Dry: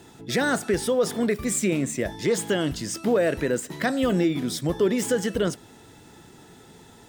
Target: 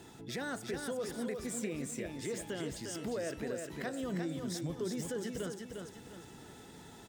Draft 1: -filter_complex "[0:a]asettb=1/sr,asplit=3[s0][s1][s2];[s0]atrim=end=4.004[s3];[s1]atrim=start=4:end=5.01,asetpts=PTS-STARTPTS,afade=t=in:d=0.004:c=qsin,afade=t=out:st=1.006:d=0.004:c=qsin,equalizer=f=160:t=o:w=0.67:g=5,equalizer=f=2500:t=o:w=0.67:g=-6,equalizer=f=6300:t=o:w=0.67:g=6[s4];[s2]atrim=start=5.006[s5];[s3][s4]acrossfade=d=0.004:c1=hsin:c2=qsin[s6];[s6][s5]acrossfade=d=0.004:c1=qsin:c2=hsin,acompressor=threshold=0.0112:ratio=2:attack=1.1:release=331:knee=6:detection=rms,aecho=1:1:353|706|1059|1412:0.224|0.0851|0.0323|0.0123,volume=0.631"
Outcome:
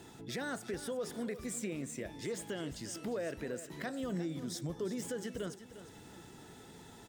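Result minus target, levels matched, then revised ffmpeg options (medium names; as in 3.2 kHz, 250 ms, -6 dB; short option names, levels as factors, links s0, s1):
echo-to-direct -8 dB
-filter_complex "[0:a]asettb=1/sr,asplit=3[s0][s1][s2];[s0]atrim=end=4.004[s3];[s1]atrim=start=4:end=5.01,asetpts=PTS-STARTPTS,afade=t=in:d=0.004:c=qsin,afade=t=out:st=1.006:d=0.004:c=qsin,equalizer=f=160:t=o:w=0.67:g=5,equalizer=f=2500:t=o:w=0.67:g=-6,equalizer=f=6300:t=o:w=0.67:g=6[s4];[s2]atrim=start=5.006[s5];[s3][s4]acrossfade=d=0.004:c1=hsin:c2=qsin[s6];[s6][s5]acrossfade=d=0.004:c1=qsin:c2=hsin,acompressor=threshold=0.0112:ratio=2:attack=1.1:release=331:knee=6:detection=rms,aecho=1:1:353|706|1059|1412|1765:0.562|0.214|0.0812|0.0309|0.0117,volume=0.631"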